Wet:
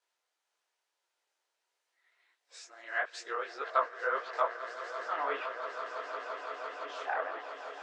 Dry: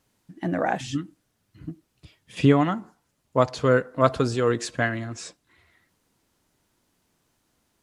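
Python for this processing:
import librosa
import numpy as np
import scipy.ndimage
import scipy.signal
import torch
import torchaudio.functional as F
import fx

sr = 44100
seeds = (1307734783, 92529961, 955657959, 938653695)

y = x[::-1].copy()
y = fx.air_absorb(y, sr, metres=55.0)
y = fx.notch(y, sr, hz=1100.0, q=16.0)
y = fx.echo_swell(y, sr, ms=170, loudest=8, wet_db=-14.0)
y = fx.env_lowpass_down(y, sr, base_hz=2900.0, full_db=-19.0)
y = fx.dynamic_eq(y, sr, hz=1200.0, q=1.4, threshold_db=-35.0, ratio=4.0, max_db=6)
y = scipy.signal.sosfilt(scipy.signal.bessel(8, 760.0, 'highpass', norm='mag', fs=sr, output='sos'), y)
y = fx.detune_double(y, sr, cents=56)
y = y * 10.0 ** (-4.5 / 20.0)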